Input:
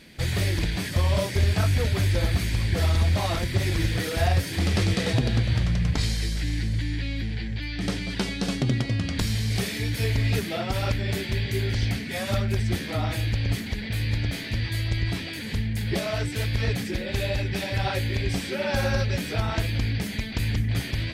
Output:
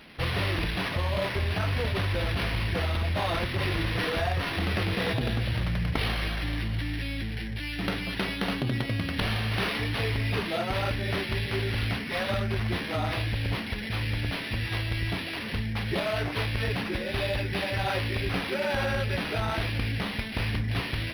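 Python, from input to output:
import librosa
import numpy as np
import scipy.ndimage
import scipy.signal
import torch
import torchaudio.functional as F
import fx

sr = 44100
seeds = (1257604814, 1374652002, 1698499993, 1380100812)

p1 = fx.low_shelf(x, sr, hz=300.0, db=-7.0)
p2 = fx.over_compress(p1, sr, threshold_db=-29.0, ratio=-1.0)
p3 = p1 + (p2 * 10.0 ** (1.0 / 20.0))
p4 = fx.high_shelf(p3, sr, hz=8100.0, db=12.0)
p5 = np.interp(np.arange(len(p4)), np.arange(len(p4))[::6], p4[::6])
y = p5 * 10.0 ** (-5.0 / 20.0)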